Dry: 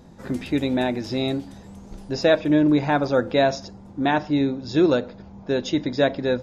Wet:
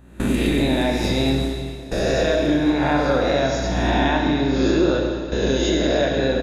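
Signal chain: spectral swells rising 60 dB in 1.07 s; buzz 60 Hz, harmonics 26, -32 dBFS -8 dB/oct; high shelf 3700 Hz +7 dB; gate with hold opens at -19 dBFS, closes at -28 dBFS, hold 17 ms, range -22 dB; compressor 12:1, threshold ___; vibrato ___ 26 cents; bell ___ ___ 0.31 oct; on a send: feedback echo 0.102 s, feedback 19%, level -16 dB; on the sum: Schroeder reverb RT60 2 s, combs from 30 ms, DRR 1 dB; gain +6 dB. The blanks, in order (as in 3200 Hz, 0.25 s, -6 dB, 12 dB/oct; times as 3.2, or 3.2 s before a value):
-24 dBFS, 3.4 Hz, 5200 Hz, -12 dB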